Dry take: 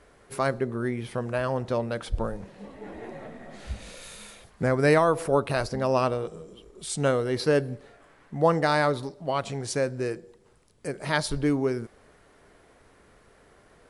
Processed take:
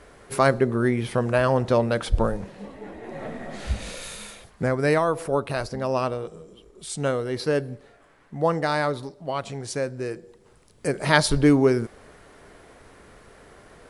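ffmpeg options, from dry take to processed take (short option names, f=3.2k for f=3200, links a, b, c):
-af "volume=24dB,afade=t=out:st=2.26:d=0.77:silence=0.421697,afade=t=in:st=3.03:d=0.26:silence=0.375837,afade=t=out:st=3.87:d=0.91:silence=0.354813,afade=t=in:st=10.07:d=0.81:silence=0.375837"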